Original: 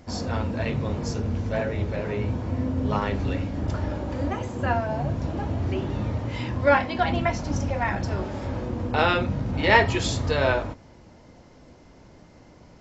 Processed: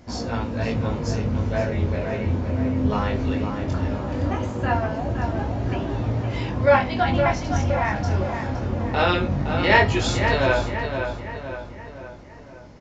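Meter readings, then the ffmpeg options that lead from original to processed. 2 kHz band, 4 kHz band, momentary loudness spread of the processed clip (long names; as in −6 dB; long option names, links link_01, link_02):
+2.5 dB, +2.0 dB, 10 LU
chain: -filter_complex "[0:a]flanger=delay=17:depth=6.6:speed=0.18,asplit=2[link_01][link_02];[link_02]adelay=515,lowpass=frequency=3400:poles=1,volume=-6.5dB,asplit=2[link_03][link_04];[link_04]adelay=515,lowpass=frequency=3400:poles=1,volume=0.51,asplit=2[link_05][link_06];[link_06]adelay=515,lowpass=frequency=3400:poles=1,volume=0.51,asplit=2[link_07][link_08];[link_08]adelay=515,lowpass=frequency=3400:poles=1,volume=0.51,asplit=2[link_09][link_10];[link_10]adelay=515,lowpass=frequency=3400:poles=1,volume=0.51,asplit=2[link_11][link_12];[link_12]adelay=515,lowpass=frequency=3400:poles=1,volume=0.51[link_13];[link_01][link_03][link_05][link_07][link_09][link_11][link_13]amix=inputs=7:normalize=0,aresample=16000,aresample=44100,volume=4.5dB"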